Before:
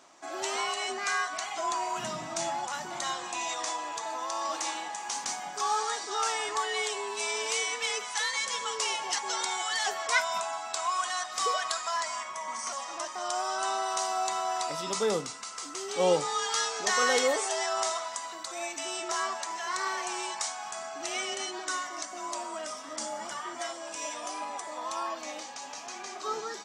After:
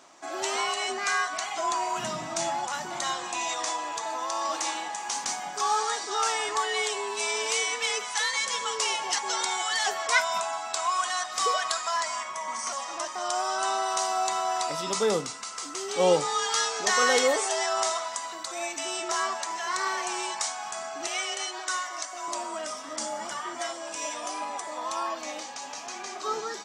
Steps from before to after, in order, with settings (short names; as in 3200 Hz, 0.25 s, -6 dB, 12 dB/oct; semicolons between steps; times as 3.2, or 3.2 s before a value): 21.07–22.28 HPF 540 Hz 12 dB/oct; gain +3 dB